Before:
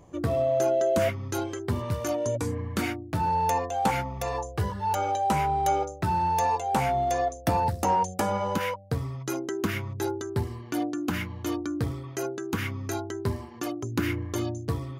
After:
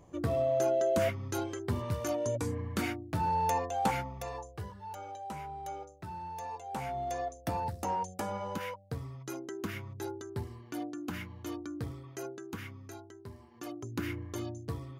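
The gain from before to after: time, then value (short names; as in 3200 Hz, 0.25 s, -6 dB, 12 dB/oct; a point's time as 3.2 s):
3.85 s -4.5 dB
4.9 s -16.5 dB
6.42 s -16.5 dB
7.08 s -9.5 dB
12.3 s -9.5 dB
13.29 s -19 dB
13.74 s -8.5 dB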